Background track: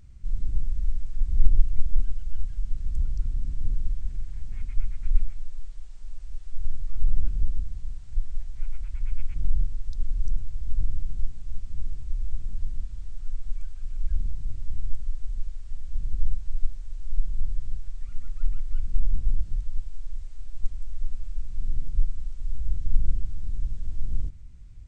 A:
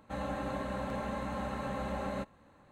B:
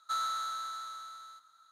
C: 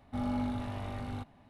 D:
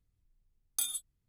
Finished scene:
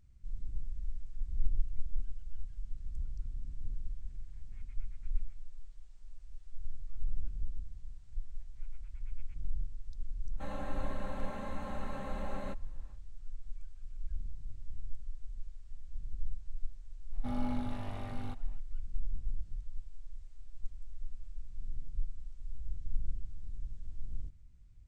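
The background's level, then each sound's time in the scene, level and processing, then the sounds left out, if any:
background track -12.5 dB
10.3 add A -5.5 dB, fades 0.10 s
17.11 add C -3.5 dB, fades 0.05 s
not used: B, D

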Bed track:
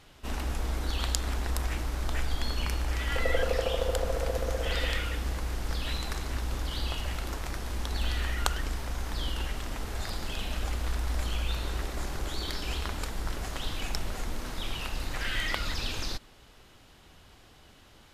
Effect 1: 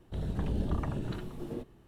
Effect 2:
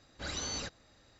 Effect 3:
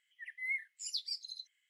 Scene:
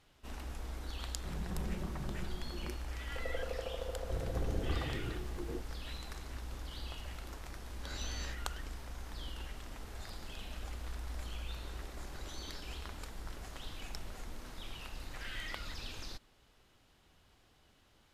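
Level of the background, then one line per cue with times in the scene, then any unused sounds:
bed track -11.5 dB
1.12 add 1 -10 dB + comb 5.4 ms, depth 72%
3.98 add 1 -5.5 dB + comb 2.6 ms, depth 52%
7.64 add 2 -12.5 dB + spectral dilation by 60 ms
11.92 add 2 -16 dB
not used: 3

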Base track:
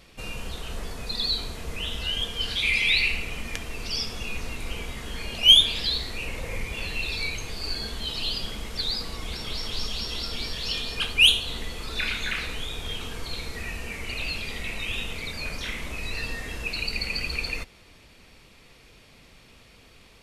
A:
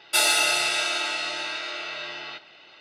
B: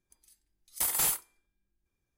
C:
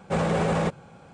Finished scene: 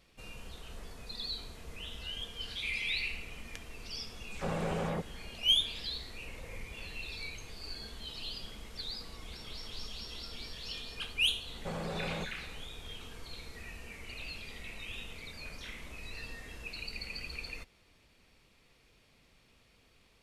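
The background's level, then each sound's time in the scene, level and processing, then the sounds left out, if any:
base track -12.5 dB
4.18 add C -10.5 dB + dispersion lows, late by 0.139 s, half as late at 2800 Hz
11.55 add C -9 dB + compressor 2.5:1, threshold -28 dBFS
not used: A, B

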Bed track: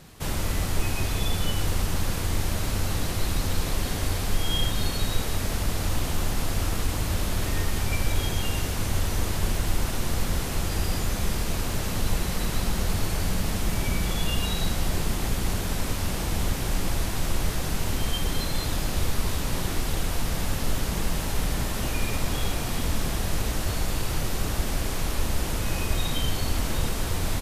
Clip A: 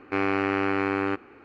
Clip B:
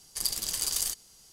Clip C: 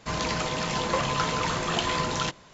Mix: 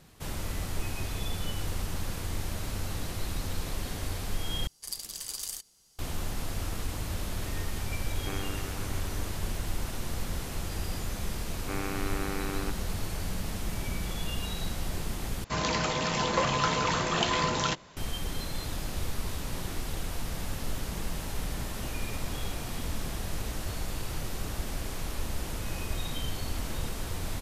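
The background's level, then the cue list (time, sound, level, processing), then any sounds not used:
bed track -7.5 dB
4.67 replace with B -7.5 dB
8.14 add A -13 dB + reverb removal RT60 1.9 s
11.56 add A -11 dB
15.44 replace with C -0.5 dB

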